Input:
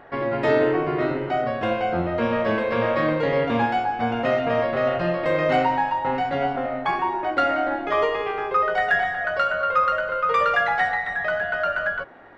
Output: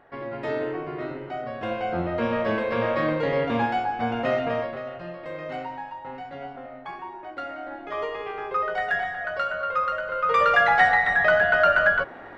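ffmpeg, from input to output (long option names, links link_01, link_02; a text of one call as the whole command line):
ffmpeg -i in.wav -af "volume=16.5dB,afade=type=in:start_time=1.43:duration=0.63:silence=0.473151,afade=type=out:start_time=4.42:duration=0.42:silence=0.281838,afade=type=in:start_time=7.58:duration=0.96:silence=0.375837,afade=type=in:start_time=10.03:duration=1.03:silence=0.298538" out.wav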